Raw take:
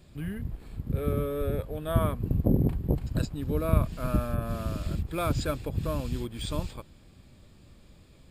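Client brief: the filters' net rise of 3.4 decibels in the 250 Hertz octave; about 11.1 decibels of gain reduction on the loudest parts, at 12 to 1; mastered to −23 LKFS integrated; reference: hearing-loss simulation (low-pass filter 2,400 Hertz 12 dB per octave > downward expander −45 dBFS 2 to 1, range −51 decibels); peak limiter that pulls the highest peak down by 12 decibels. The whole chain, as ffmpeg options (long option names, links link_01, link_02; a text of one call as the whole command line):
ffmpeg -i in.wav -af "equalizer=frequency=250:width_type=o:gain=4.5,acompressor=threshold=-27dB:ratio=12,alimiter=level_in=5dB:limit=-24dB:level=0:latency=1,volume=-5dB,lowpass=2400,agate=range=-51dB:threshold=-45dB:ratio=2,volume=16dB" out.wav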